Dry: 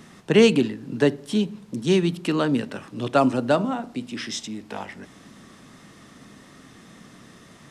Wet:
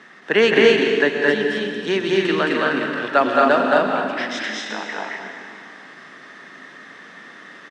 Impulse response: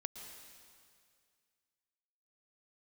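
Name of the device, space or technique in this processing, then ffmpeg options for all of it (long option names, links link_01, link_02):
station announcement: -filter_complex "[0:a]highpass=370,lowpass=4200,equalizer=frequency=1700:width_type=o:width=0.58:gain=11,aecho=1:1:218.7|259.5:0.891|0.708[link_01];[1:a]atrim=start_sample=2205[link_02];[link_01][link_02]afir=irnorm=-1:irlink=0,volume=5dB"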